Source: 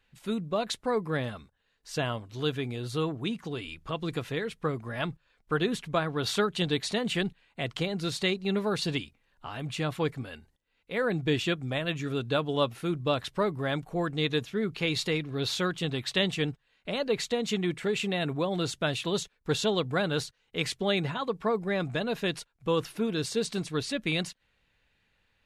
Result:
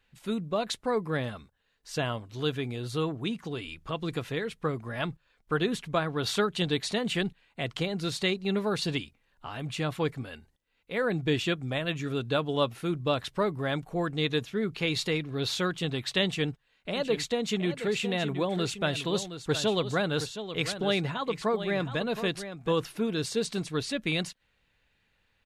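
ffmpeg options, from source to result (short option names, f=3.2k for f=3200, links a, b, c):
-filter_complex "[0:a]asplit=3[a][b][c];[a]afade=t=out:st=16.95:d=0.02[d];[b]aecho=1:1:719:0.299,afade=t=in:st=16.95:d=0.02,afade=t=out:st=22.72:d=0.02[e];[c]afade=t=in:st=22.72:d=0.02[f];[d][e][f]amix=inputs=3:normalize=0"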